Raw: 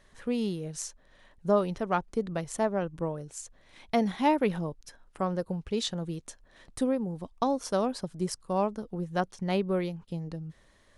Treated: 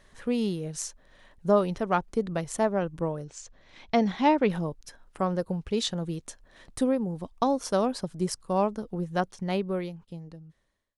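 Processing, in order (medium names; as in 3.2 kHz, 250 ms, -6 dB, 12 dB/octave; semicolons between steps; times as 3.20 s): fade out at the end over 1.98 s; 3.24–4.50 s: low-pass 6.6 kHz 24 dB/octave; trim +2.5 dB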